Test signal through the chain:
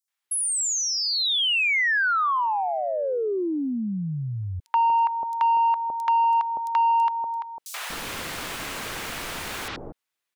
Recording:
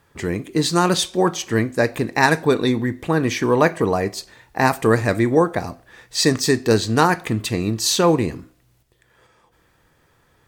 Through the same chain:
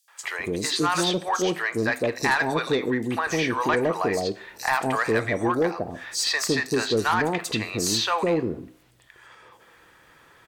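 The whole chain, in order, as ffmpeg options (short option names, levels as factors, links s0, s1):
-filter_complex "[0:a]acrossover=split=670|5200[s0][s1][s2];[s1]adelay=80[s3];[s0]adelay=240[s4];[s4][s3][s2]amix=inputs=3:normalize=0,asplit=2[s5][s6];[s6]highpass=f=720:p=1,volume=5.62,asoftclip=type=tanh:threshold=0.794[s7];[s5][s7]amix=inputs=2:normalize=0,lowpass=f=4900:p=1,volume=0.501,acompressor=threshold=0.0178:ratio=1.5"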